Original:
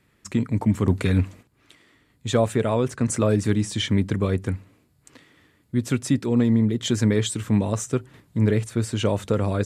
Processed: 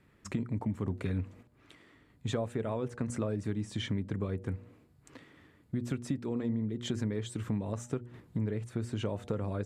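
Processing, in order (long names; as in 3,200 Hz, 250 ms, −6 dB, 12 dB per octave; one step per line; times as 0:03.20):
high-shelf EQ 2,700 Hz −10 dB
hum removal 120 Hz, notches 7
downward compressor 4 to 1, threshold −32 dBFS, peak gain reduction 15 dB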